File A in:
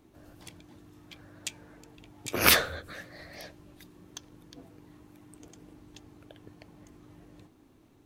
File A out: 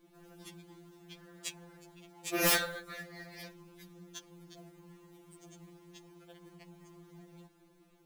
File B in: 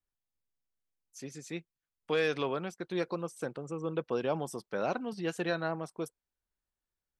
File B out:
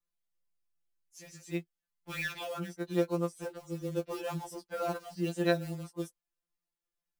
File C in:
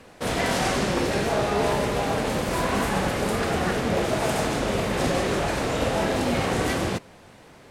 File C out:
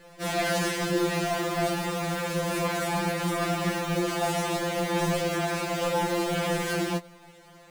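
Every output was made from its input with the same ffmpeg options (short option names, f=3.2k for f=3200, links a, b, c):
-af "acrusher=bits=4:mode=log:mix=0:aa=0.000001,aeval=exprs='0.126*(abs(mod(val(0)/0.126+3,4)-2)-1)':c=same,afftfilt=real='re*2.83*eq(mod(b,8),0)':imag='im*2.83*eq(mod(b,8),0)':win_size=2048:overlap=0.75"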